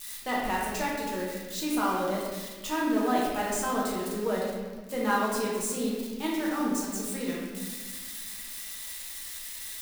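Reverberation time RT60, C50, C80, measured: 1.4 s, -0.5 dB, 2.0 dB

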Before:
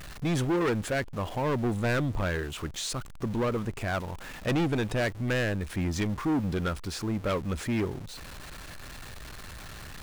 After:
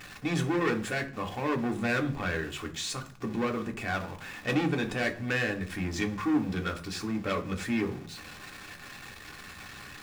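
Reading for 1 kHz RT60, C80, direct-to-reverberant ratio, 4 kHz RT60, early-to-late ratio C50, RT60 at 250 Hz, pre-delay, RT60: 0.40 s, 19.5 dB, 3.0 dB, 0.55 s, 15.0 dB, 0.65 s, 3 ms, 0.40 s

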